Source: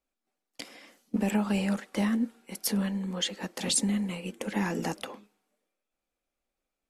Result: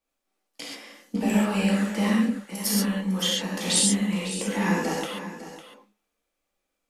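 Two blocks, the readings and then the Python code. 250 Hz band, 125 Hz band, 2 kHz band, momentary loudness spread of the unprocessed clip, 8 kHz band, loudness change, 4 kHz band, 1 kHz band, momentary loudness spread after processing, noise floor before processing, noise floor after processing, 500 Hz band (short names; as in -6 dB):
+5.0 dB, +5.0 dB, +6.5 dB, 14 LU, +7.0 dB, +5.5 dB, +7.0 dB, +6.0 dB, 17 LU, under -85 dBFS, -81 dBFS, +5.5 dB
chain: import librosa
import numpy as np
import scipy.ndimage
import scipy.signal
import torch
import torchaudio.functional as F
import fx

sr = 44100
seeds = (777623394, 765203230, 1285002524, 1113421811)

p1 = fx.low_shelf(x, sr, hz=370.0, db=-3.5)
p2 = p1 + fx.echo_single(p1, sr, ms=553, db=-13.0, dry=0)
y = fx.rev_gated(p2, sr, seeds[0], gate_ms=160, shape='flat', drr_db=-5.5)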